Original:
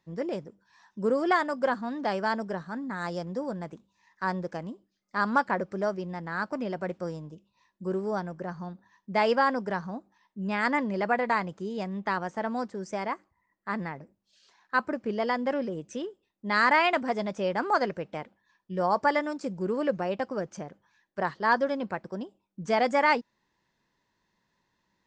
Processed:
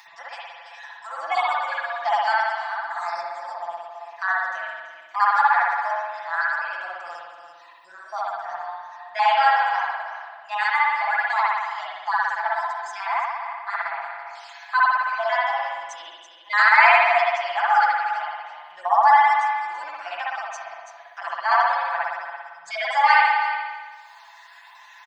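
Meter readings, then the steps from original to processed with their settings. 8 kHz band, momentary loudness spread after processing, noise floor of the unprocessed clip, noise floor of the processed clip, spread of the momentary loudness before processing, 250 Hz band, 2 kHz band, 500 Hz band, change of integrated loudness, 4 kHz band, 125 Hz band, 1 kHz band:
n/a, 21 LU, -77 dBFS, -48 dBFS, 16 LU, under -30 dB, +10.0 dB, -2.0 dB, +8.0 dB, +7.0 dB, under -35 dB, +10.0 dB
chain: random spectral dropouts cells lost 35%; echo 0.333 s -14 dB; in parallel at +2 dB: upward compressor, threshold -30 dBFS; on the sum: elliptic high-pass 730 Hz, stop band 40 dB; comb 5.9 ms, depth 86%; spring tank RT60 1.4 s, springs 57 ms, chirp 25 ms, DRR -6 dB; gain -4.5 dB

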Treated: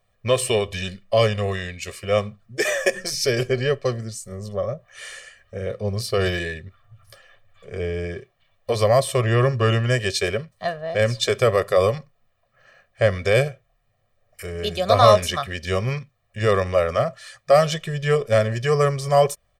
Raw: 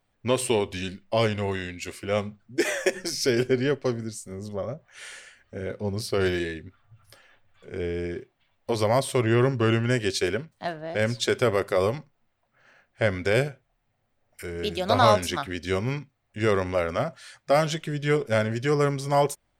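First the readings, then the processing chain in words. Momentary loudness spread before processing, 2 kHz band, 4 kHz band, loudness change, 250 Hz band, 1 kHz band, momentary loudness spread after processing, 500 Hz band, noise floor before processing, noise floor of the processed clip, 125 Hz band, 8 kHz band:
13 LU, +3.0 dB, +4.5 dB, +4.5 dB, -2.0 dB, +4.0 dB, 14 LU, +5.0 dB, -73 dBFS, -68 dBFS, +5.0 dB, +4.0 dB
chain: comb 1.7 ms, depth 89%; gain +1.5 dB

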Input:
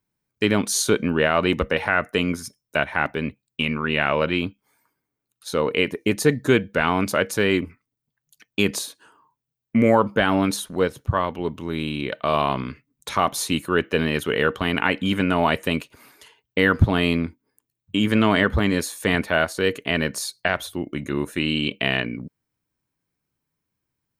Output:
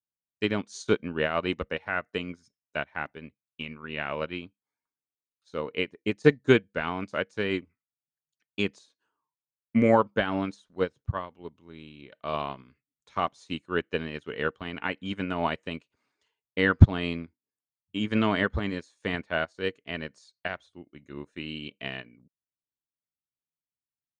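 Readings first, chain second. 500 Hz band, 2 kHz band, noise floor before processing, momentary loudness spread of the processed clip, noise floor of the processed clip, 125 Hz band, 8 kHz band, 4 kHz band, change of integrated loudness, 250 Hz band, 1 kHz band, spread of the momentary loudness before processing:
-6.5 dB, -8.5 dB, -83 dBFS, 18 LU, under -85 dBFS, -3.5 dB, under -20 dB, -10.0 dB, -6.5 dB, -7.5 dB, -8.0 dB, 10 LU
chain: inverse Chebyshev low-pass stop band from 12000 Hz, stop band 40 dB; upward expander 2.5:1, over -30 dBFS; gain +4 dB

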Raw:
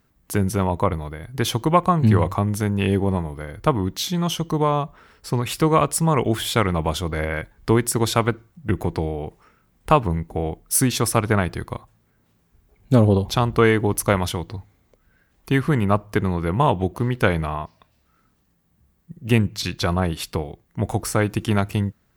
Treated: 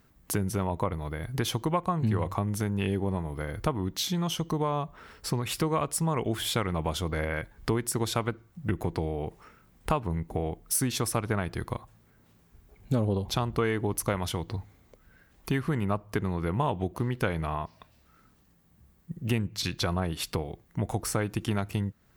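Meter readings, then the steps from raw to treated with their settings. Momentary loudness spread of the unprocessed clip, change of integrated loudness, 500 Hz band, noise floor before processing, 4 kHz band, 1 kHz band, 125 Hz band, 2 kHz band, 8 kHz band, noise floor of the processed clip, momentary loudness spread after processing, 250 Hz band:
11 LU, -8.5 dB, -9.5 dB, -64 dBFS, -5.5 dB, -9.5 dB, -8.5 dB, -9.0 dB, -6.5 dB, -63 dBFS, 7 LU, -8.5 dB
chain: compressor 2.5:1, threshold -32 dBFS, peak gain reduction 15 dB; gain +2 dB

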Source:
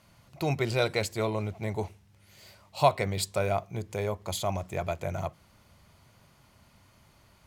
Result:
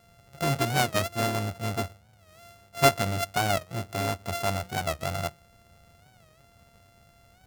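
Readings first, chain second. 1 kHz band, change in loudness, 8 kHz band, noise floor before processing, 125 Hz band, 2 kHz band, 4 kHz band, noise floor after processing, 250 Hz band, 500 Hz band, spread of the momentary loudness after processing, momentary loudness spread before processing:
+3.5 dB, +2.5 dB, +5.0 dB, -61 dBFS, +2.0 dB, +5.5 dB, +5.0 dB, -59 dBFS, +2.5 dB, -0.5 dB, 11 LU, 10 LU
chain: sample sorter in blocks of 64 samples; record warp 45 rpm, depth 160 cents; gain +2 dB

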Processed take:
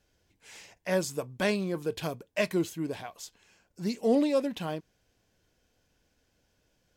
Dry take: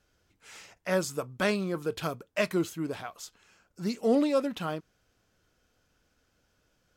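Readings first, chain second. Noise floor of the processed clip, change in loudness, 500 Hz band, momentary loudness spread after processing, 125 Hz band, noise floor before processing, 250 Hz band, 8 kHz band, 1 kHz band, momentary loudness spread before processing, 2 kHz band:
-73 dBFS, -0.5 dB, 0.0 dB, 17 LU, 0.0 dB, -73 dBFS, 0.0 dB, 0.0 dB, -2.5 dB, 16 LU, -1.5 dB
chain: bell 1300 Hz -12 dB 0.26 oct

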